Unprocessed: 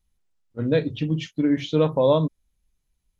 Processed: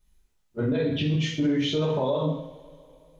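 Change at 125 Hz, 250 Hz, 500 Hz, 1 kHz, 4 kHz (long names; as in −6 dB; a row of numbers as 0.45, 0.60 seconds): −1.0, −2.0, −5.0, −4.0, +3.5 decibels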